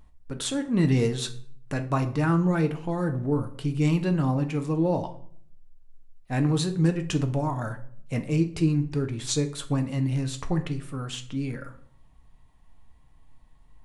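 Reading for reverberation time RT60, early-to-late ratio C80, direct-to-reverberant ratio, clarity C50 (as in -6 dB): 0.55 s, 17.5 dB, 6.0 dB, 14.0 dB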